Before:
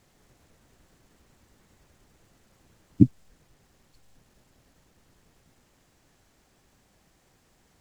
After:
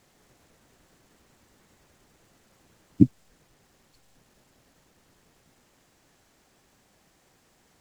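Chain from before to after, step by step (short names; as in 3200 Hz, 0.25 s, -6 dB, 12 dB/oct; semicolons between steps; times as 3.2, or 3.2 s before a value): low shelf 120 Hz -8.5 dB; gain +2 dB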